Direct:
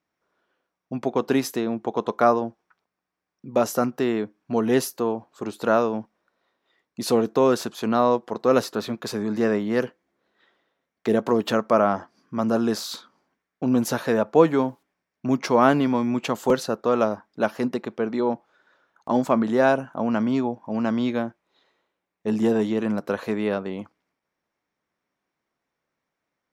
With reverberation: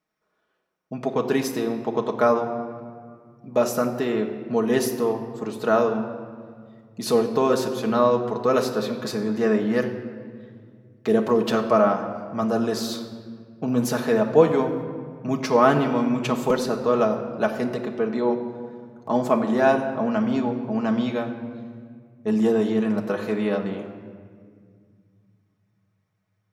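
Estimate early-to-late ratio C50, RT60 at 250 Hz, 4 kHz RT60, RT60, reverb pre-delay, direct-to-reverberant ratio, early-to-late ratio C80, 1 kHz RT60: 8.5 dB, 3.8 s, 1.2 s, 2.0 s, 5 ms, 1.5 dB, 10.0 dB, 1.8 s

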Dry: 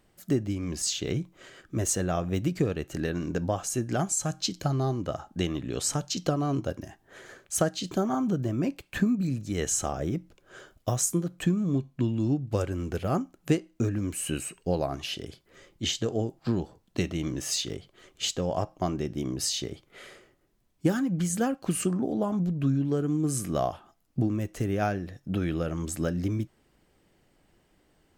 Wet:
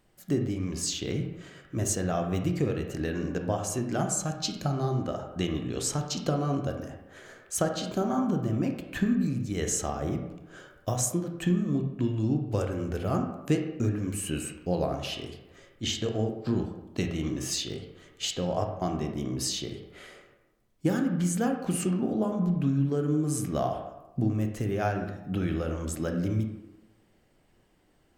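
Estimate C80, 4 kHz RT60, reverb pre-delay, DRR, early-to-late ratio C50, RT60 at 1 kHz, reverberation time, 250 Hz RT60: 8.5 dB, 0.65 s, 22 ms, 4.0 dB, 6.0 dB, 1.0 s, 1.0 s, 0.95 s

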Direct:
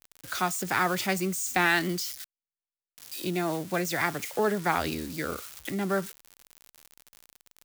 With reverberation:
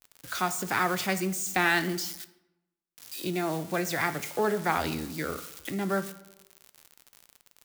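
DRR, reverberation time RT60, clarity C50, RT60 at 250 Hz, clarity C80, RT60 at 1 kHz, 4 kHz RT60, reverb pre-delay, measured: 11.0 dB, 0.95 s, 14.5 dB, 1.0 s, 17.0 dB, 0.95 s, 0.60 s, 6 ms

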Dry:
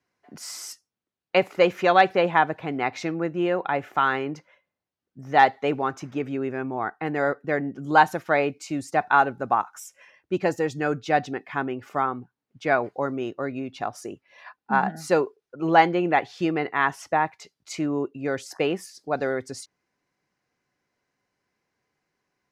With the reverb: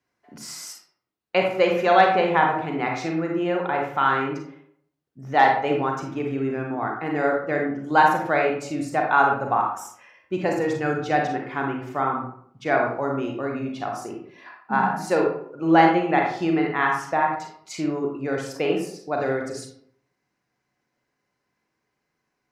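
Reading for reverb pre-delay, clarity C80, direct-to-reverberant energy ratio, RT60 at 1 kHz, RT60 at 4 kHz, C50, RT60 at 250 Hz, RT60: 33 ms, 7.5 dB, 0.5 dB, 0.60 s, 0.35 s, 3.0 dB, 0.75 s, 0.65 s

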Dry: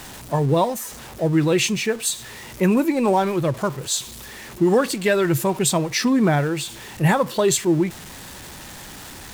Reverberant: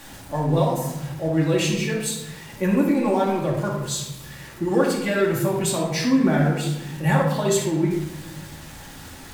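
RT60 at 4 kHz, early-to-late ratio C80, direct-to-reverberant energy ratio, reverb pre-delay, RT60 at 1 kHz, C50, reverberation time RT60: 0.60 s, 6.0 dB, −4.0 dB, 3 ms, 0.90 s, 2.5 dB, 0.95 s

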